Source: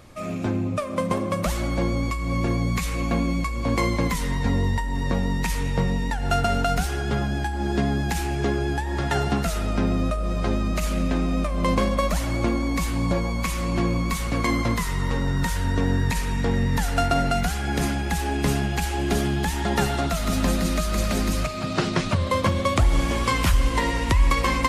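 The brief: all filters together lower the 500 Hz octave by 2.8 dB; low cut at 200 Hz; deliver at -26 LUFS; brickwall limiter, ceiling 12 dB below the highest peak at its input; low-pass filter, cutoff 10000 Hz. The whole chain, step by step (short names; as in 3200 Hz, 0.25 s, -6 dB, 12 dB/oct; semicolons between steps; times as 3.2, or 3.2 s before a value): HPF 200 Hz; LPF 10000 Hz; bell 500 Hz -3.5 dB; gain +4 dB; limiter -16.5 dBFS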